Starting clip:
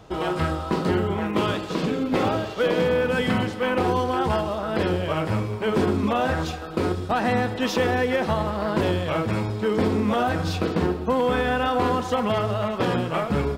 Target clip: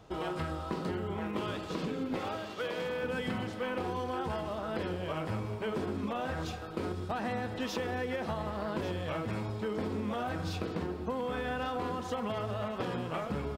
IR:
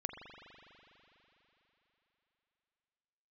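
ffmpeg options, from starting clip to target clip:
-filter_complex "[0:a]asettb=1/sr,asplit=3[a][b][c];[a]atrim=end=2.194[d];[b]atrim=start=2.19:end=3.03,asetpts=PTS-STARTPTS,afade=t=in:d=0.004:c=qsin,afade=t=out:st=0.836:d=0.004:c=qsin,lowshelf=f=430:g=-10.5[e];[c]atrim=start=3.026[f];[d][e]acrossfade=d=0.004:c1=hsin:c2=qsin[g];[g][f]acrossfade=d=0.004:c1=qsin:c2=hsin,acompressor=threshold=-23dB:ratio=6,asplit=2[h][i];[i]aecho=0:1:1145:0.188[j];[h][j]amix=inputs=2:normalize=0,volume=-8dB"

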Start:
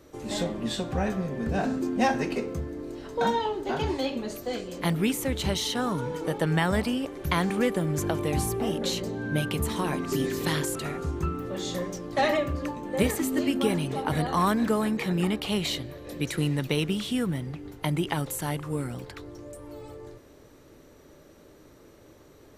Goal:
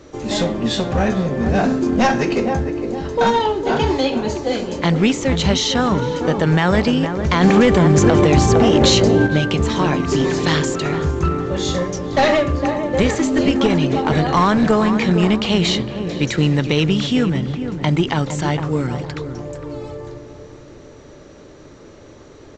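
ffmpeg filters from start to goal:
-filter_complex "[0:a]asplit=2[a][b];[b]adelay=458,lowpass=f=1.2k:p=1,volume=-8.5dB,asplit=2[c][d];[d]adelay=458,lowpass=f=1.2k:p=1,volume=0.42,asplit=2[e][f];[f]adelay=458,lowpass=f=1.2k:p=1,volume=0.42,asplit=2[g][h];[h]adelay=458,lowpass=f=1.2k:p=1,volume=0.42,asplit=2[i][j];[j]adelay=458,lowpass=f=1.2k:p=1,volume=0.42[k];[a][c][e][g][i][k]amix=inputs=6:normalize=0,aeval=exprs='clip(val(0),-1,0.0708)':c=same,asettb=1/sr,asplit=3[l][m][n];[l]atrim=end=7.414[o];[m]atrim=start=7.41:end=9.27,asetpts=PTS-STARTPTS,afade=t=in:d=0.004:c=qsin,afade=t=out:st=1.856:d=0.004:c=qsin,acontrast=79[p];[n]atrim=start=9.266[q];[o][p]acrossfade=d=0.004:c1=hsin:c2=qsin[r];[r][q]acrossfade=d=0.004:c1=qsin:c2=hsin,alimiter=level_in=13dB:limit=-1dB:release=50:level=0:latency=1,volume=-2.5dB" -ar 16000 -c:a pcm_alaw

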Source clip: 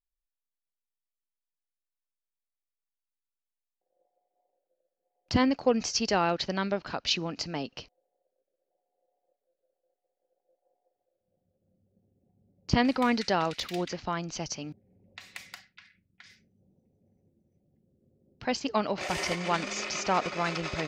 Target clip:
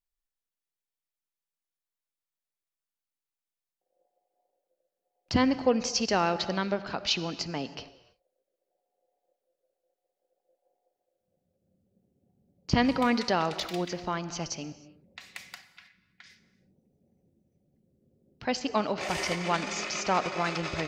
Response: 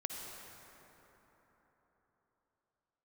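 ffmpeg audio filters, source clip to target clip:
-filter_complex "[0:a]bandreject=f=50:t=h:w=6,bandreject=f=100:t=h:w=6,asplit=2[a][b];[1:a]atrim=start_sample=2205,afade=t=out:st=0.38:d=0.01,atrim=end_sample=17199[c];[b][c]afir=irnorm=-1:irlink=0,volume=-6.5dB[d];[a][d]amix=inputs=2:normalize=0,volume=-2.5dB"

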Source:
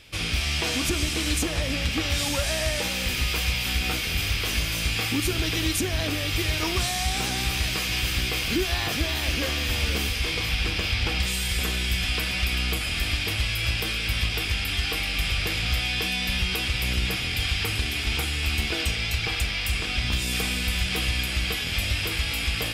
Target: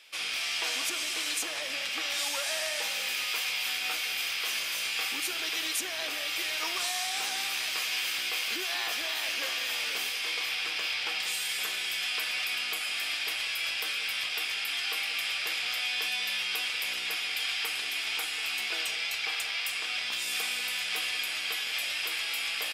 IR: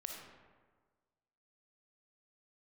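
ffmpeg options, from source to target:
-filter_complex "[0:a]highpass=750,asplit=2[a][b];[b]adelay=190,highpass=300,lowpass=3.4k,asoftclip=type=hard:threshold=-24dB,volume=-11dB[c];[a][c]amix=inputs=2:normalize=0,volume=-3.5dB"

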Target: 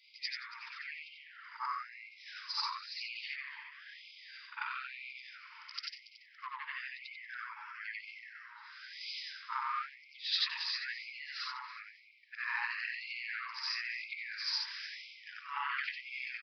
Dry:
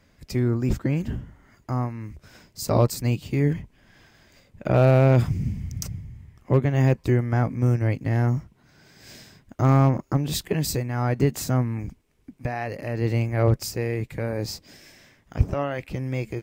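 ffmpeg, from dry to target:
-filter_complex "[0:a]afftfilt=real='re':imag='-im':win_size=8192:overlap=0.75,equalizer=f=65:w=1.9:g=-6.5,asplit=2[a][b];[b]asoftclip=type=tanh:threshold=-24dB,volume=-7dB[c];[a][c]amix=inputs=2:normalize=0,acompressor=threshold=-31dB:ratio=16,asplit=2[d][e];[e]adelay=281,lowpass=f=1.6k:p=1,volume=-7dB,asplit=2[f][g];[g]adelay=281,lowpass=f=1.6k:p=1,volume=0.54,asplit=2[h][i];[i]adelay=281,lowpass=f=1.6k:p=1,volume=0.54,asplit=2[j][k];[k]adelay=281,lowpass=f=1.6k:p=1,volume=0.54,asplit=2[l][m];[m]adelay=281,lowpass=f=1.6k:p=1,volume=0.54,asplit=2[n][o];[o]adelay=281,lowpass=f=1.6k:p=1,volume=0.54,asplit=2[p][q];[q]adelay=281,lowpass=f=1.6k:p=1,volume=0.54[r];[d][f][h][j][l][n][p][r]amix=inputs=8:normalize=0,flanger=delay=0.6:depth=9.7:regen=-40:speed=1.2:shape=triangular,adynamicequalizer=threshold=0.00112:dfrequency=1300:dqfactor=2.3:tfrequency=1300:tqfactor=2.3:attack=5:release=100:ratio=0.375:range=2:mode=cutabove:tftype=bell,aresample=11025,aresample=44100,afftfilt=real='re*gte(b*sr/1024,850*pow(2100/850,0.5+0.5*sin(2*PI*1*pts/sr)))':imag='im*gte(b*sr/1024,850*pow(2100/850,0.5+0.5*sin(2*PI*1*pts/sr)))':win_size=1024:overlap=0.75,volume=13dB"

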